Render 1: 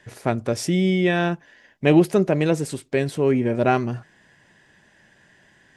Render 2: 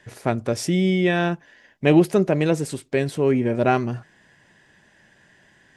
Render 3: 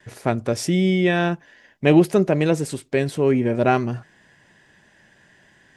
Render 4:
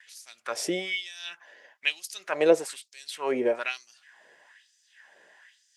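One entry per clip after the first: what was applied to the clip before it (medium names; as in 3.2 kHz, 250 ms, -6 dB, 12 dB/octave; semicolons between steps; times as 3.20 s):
no audible change
gate with hold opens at -50 dBFS; trim +1 dB
LFO high-pass sine 1.1 Hz 460–5900 Hz; trim -3.5 dB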